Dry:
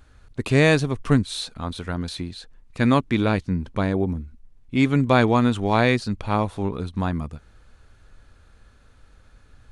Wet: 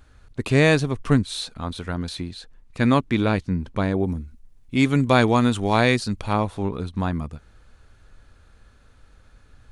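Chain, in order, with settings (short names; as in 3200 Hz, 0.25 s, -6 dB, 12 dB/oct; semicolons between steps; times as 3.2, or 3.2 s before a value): 4.04–6.33 high shelf 5400 Hz +9.5 dB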